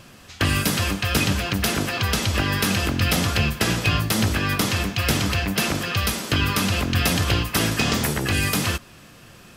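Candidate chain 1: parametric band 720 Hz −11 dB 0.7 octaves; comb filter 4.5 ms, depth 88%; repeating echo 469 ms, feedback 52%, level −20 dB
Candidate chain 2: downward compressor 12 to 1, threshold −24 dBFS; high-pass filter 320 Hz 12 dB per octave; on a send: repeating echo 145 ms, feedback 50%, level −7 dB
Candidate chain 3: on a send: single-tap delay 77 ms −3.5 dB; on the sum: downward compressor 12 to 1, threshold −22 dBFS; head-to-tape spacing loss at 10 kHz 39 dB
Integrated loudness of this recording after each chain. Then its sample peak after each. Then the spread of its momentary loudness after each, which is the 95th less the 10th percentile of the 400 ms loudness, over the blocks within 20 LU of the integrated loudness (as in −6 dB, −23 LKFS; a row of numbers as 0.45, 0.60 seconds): −20.0, −28.5, −30.0 LKFS; −4.0, −9.5, −16.5 dBFS; 3, 2, 2 LU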